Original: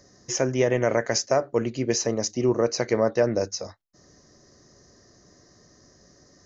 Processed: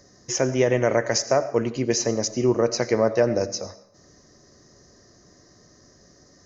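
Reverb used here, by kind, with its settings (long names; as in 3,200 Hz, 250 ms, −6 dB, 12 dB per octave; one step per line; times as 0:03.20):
comb and all-pass reverb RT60 0.67 s, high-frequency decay 0.95×, pre-delay 45 ms, DRR 14 dB
level +1.5 dB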